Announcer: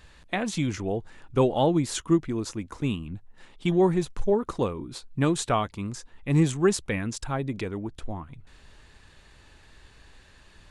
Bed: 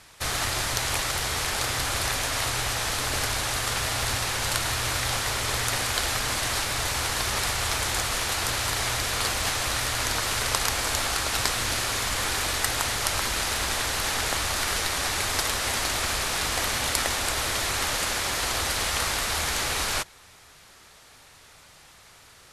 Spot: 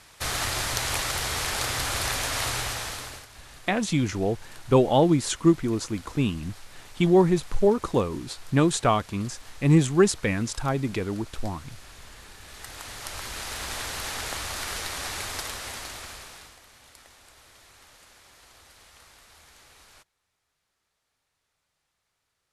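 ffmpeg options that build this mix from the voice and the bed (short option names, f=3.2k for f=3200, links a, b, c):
-filter_complex "[0:a]adelay=3350,volume=3dB[a];[1:a]volume=15.5dB,afade=t=out:st=2.52:d=0.74:silence=0.0841395,afade=t=in:st=12.41:d=1.38:silence=0.149624,afade=t=out:st=15.16:d=1.43:silence=0.0891251[b];[a][b]amix=inputs=2:normalize=0"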